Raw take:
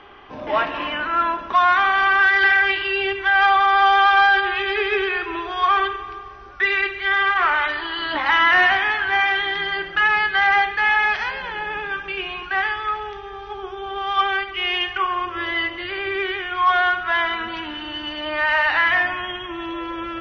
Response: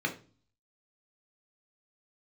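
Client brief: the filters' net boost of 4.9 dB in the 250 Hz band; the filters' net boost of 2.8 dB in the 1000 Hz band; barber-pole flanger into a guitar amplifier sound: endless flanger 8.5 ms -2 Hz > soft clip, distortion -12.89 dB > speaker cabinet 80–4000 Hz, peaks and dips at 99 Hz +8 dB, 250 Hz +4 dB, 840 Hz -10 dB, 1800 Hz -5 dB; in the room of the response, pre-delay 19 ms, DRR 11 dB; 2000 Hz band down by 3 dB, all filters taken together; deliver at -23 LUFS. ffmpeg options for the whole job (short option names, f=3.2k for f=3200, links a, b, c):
-filter_complex "[0:a]equalizer=f=250:t=o:g=6,equalizer=f=1k:t=o:g=9,equalizer=f=2k:t=o:g=-4,asplit=2[a][b];[1:a]atrim=start_sample=2205,adelay=19[c];[b][c]afir=irnorm=-1:irlink=0,volume=-18dB[d];[a][d]amix=inputs=2:normalize=0,asplit=2[e][f];[f]adelay=8.5,afreqshift=-2[g];[e][g]amix=inputs=2:normalize=1,asoftclip=threshold=-11dB,highpass=80,equalizer=f=99:t=q:w=4:g=8,equalizer=f=250:t=q:w=4:g=4,equalizer=f=840:t=q:w=4:g=-10,equalizer=f=1.8k:t=q:w=4:g=-5,lowpass=f=4k:w=0.5412,lowpass=f=4k:w=1.3066"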